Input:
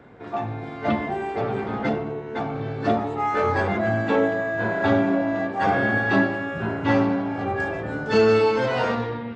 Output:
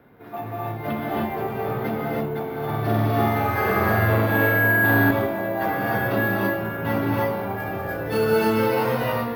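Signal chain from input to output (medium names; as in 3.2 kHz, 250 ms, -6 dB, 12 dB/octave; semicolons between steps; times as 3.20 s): gated-style reverb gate 340 ms rising, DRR -4 dB; careless resampling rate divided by 3×, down filtered, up hold; 2.65–5.11 s: flutter echo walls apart 7.9 m, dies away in 1.4 s; trim -5.5 dB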